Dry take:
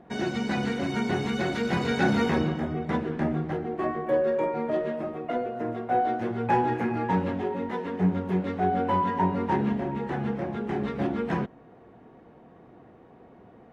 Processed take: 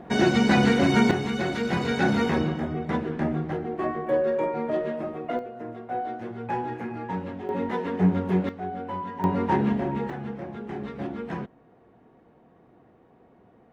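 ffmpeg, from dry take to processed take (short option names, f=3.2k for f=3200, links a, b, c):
-af "asetnsamples=n=441:p=0,asendcmd='1.11 volume volume 0.5dB;5.39 volume volume -6dB;7.49 volume volume 3dB;8.49 volume volume -8dB;9.24 volume volume 2.5dB;10.1 volume volume -5dB',volume=8.5dB"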